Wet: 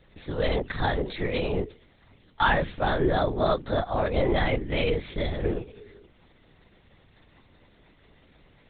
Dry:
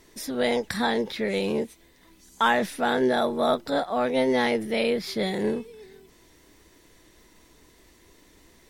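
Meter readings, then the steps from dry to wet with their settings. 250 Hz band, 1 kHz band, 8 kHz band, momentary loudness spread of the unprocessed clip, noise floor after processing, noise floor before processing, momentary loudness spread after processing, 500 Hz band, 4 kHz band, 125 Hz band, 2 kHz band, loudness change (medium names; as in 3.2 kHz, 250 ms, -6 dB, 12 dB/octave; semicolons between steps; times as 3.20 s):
-4.0 dB, -1.5 dB, under -35 dB, 6 LU, -59 dBFS, -57 dBFS, 7 LU, -2.0 dB, -3.0 dB, +10.0 dB, -1.5 dB, -1.5 dB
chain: coarse spectral quantiser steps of 15 dB; hum notches 50/100/150/200/250/300/350/400/450 Hz; LPC vocoder at 8 kHz whisper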